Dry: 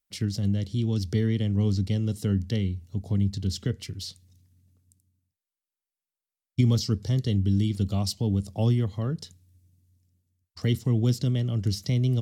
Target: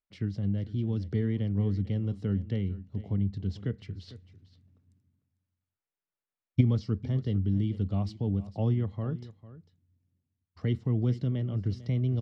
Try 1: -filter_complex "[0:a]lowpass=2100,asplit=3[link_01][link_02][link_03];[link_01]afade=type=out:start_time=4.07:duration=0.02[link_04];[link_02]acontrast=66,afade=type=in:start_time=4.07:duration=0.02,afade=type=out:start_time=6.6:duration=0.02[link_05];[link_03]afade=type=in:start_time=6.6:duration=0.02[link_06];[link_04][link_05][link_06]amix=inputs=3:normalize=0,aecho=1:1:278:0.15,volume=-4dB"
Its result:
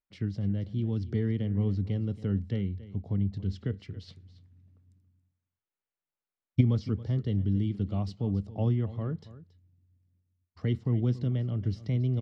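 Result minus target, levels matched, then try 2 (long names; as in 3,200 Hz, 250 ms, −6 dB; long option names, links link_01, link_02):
echo 171 ms early
-filter_complex "[0:a]lowpass=2100,asplit=3[link_01][link_02][link_03];[link_01]afade=type=out:start_time=4.07:duration=0.02[link_04];[link_02]acontrast=66,afade=type=in:start_time=4.07:duration=0.02,afade=type=out:start_time=6.6:duration=0.02[link_05];[link_03]afade=type=in:start_time=6.6:duration=0.02[link_06];[link_04][link_05][link_06]amix=inputs=3:normalize=0,aecho=1:1:449:0.15,volume=-4dB"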